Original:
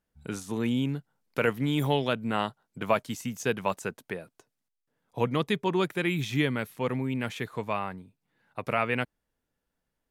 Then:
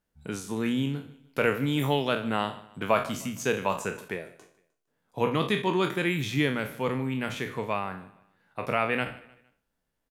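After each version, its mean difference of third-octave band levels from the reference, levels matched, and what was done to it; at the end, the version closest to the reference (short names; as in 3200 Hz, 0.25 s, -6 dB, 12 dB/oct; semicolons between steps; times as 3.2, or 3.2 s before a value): 4.0 dB: spectral trails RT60 0.39 s; notches 60/120 Hz; on a send: feedback echo 0.153 s, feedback 38%, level -19.5 dB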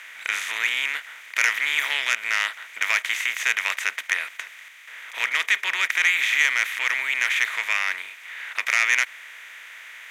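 17.0 dB: per-bin compression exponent 0.4; resonant high-pass 2000 Hz, resonance Q 4.1; core saturation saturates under 3700 Hz; gain +1 dB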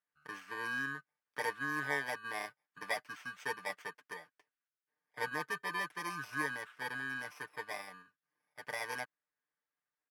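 10.5 dB: FFT order left unsorted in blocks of 32 samples; band-pass 1500 Hz, Q 2.6; comb 6.7 ms, depth 70%; gain +2.5 dB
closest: first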